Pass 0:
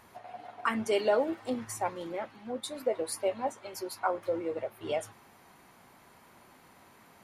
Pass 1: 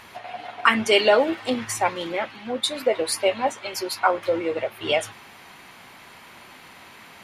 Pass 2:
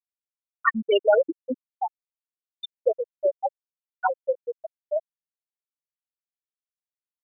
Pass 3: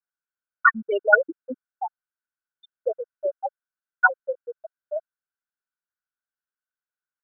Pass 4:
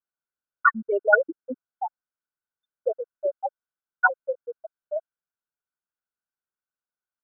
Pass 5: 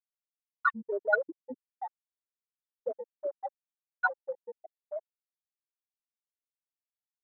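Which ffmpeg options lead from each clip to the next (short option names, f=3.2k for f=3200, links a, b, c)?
-af "equalizer=f=2.9k:t=o:w=1.9:g=11,volume=7.5dB"
-af "afftfilt=real='re*gte(hypot(re,im),0.794)':imag='im*gte(hypot(re,im),0.794)':win_size=1024:overlap=0.75"
-af "lowpass=f=1.5k:t=q:w=12,volume=-4.5dB"
-af "lowpass=f=1.5k:w=0.5412,lowpass=f=1.5k:w=1.3066"
-af "afwtdn=0.0224,volume=-8.5dB"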